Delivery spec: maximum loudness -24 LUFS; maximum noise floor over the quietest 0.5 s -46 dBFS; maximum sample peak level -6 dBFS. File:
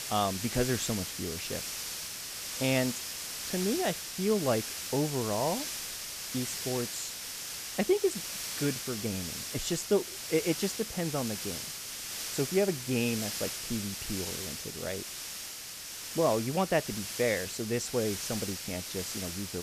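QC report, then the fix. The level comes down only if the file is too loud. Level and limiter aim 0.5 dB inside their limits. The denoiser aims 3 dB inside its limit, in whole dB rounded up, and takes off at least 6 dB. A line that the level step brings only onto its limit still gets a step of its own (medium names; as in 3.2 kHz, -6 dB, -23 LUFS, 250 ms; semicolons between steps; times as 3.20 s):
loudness -32.0 LUFS: pass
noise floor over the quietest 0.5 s -43 dBFS: fail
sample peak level -14.0 dBFS: pass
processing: noise reduction 6 dB, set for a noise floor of -43 dBFS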